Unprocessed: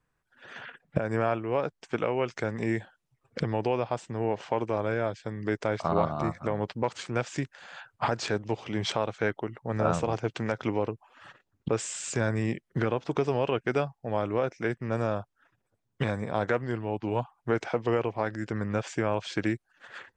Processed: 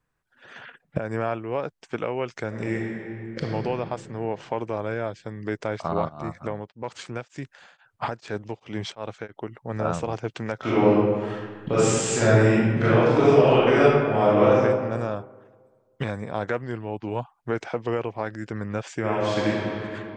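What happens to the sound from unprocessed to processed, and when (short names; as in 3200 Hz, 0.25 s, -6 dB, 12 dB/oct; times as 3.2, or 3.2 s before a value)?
2.47–3.48 reverb throw, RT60 2.7 s, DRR -1 dB
6.08–9.5 beating tremolo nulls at 1.4 Hz -> 3.4 Hz
10.59–14.58 reverb throw, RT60 1.6 s, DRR -10.5 dB
18.99–19.47 reverb throw, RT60 3 s, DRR -5.5 dB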